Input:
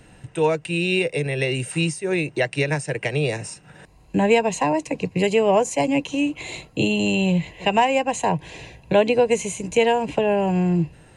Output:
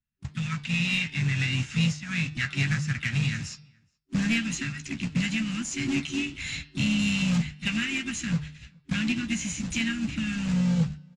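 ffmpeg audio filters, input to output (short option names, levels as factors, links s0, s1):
-filter_complex "[0:a]asplit=2[s0][s1];[s1]acompressor=threshold=0.0316:ratio=10,volume=0.794[s2];[s0][s2]amix=inputs=2:normalize=0,agate=range=0.00631:threshold=0.0282:ratio=16:detection=peak,afftfilt=real='re*(1-between(b*sr/4096,280,1200))':imag='im*(1-between(b*sr/4096,280,1200))':win_size=4096:overlap=0.75,aresample=16000,acrusher=bits=3:mode=log:mix=0:aa=0.000001,aresample=44100,asplit=2[s3][s4];[s4]adelay=13,volume=0.355[s5];[s3][s5]amix=inputs=2:normalize=0,flanger=delay=3.1:depth=6.8:regen=-81:speed=1.7:shape=triangular,asplit=4[s6][s7][s8][s9];[s7]asetrate=33038,aresample=44100,atempo=1.33484,volume=0.158[s10];[s8]asetrate=37084,aresample=44100,atempo=1.18921,volume=0.2[s11];[s9]asetrate=58866,aresample=44100,atempo=0.749154,volume=0.2[s12];[s6][s10][s11][s12]amix=inputs=4:normalize=0,lowshelf=f=140:g=4,bandreject=f=151.2:t=h:w=4,bandreject=f=302.4:t=h:w=4,bandreject=f=453.6:t=h:w=4,bandreject=f=604.8:t=h:w=4,bandreject=f=756:t=h:w=4,bandreject=f=907.2:t=h:w=4,bandreject=f=1058.4:t=h:w=4,bandreject=f=1209.6:t=h:w=4,bandreject=f=1360.8:t=h:w=4,bandreject=f=1512:t=h:w=4,bandreject=f=1663.2:t=h:w=4,bandreject=f=1814.4:t=h:w=4,bandreject=f=1965.6:t=h:w=4,bandreject=f=2116.8:t=h:w=4,bandreject=f=2268:t=h:w=4,bandreject=f=2419.2:t=h:w=4,bandreject=f=2570.4:t=h:w=4,bandreject=f=2721.6:t=h:w=4,bandreject=f=2872.8:t=h:w=4,bandreject=f=3024:t=h:w=4,bandreject=f=3175.2:t=h:w=4,bandreject=f=3326.4:t=h:w=4,bandreject=f=3477.6:t=h:w=4,bandreject=f=3628.8:t=h:w=4,bandreject=f=3780:t=h:w=4,bandreject=f=3931.2:t=h:w=4,bandreject=f=4082.4:t=h:w=4,bandreject=f=4233.6:t=h:w=4,bandreject=f=4384.8:t=h:w=4,bandreject=f=4536:t=h:w=4,bandreject=f=4687.2:t=h:w=4,bandreject=f=4838.4:t=h:w=4,bandreject=f=4989.6:t=h:w=4,bandreject=f=5140.8:t=h:w=4,bandreject=f=5292:t=h:w=4,bandreject=f=5443.2:t=h:w=4,bandreject=f=5594.4:t=h:w=4,asoftclip=type=tanh:threshold=0.158,equalizer=f=62:w=1.5:g=4.5,asplit=2[s13][s14];[s14]adelay=419.8,volume=0.0316,highshelf=f=4000:g=-9.45[s15];[s13][s15]amix=inputs=2:normalize=0"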